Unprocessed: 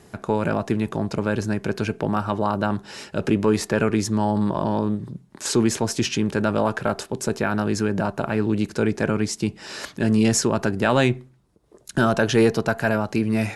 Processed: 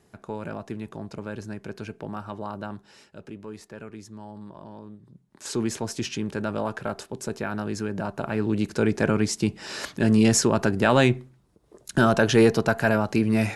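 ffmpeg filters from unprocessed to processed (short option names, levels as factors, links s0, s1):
-af "volume=2.66,afade=t=out:st=2.6:d=0.67:silence=0.375837,afade=t=in:st=5.03:d=0.61:silence=0.223872,afade=t=in:st=7.96:d=1.08:silence=0.446684"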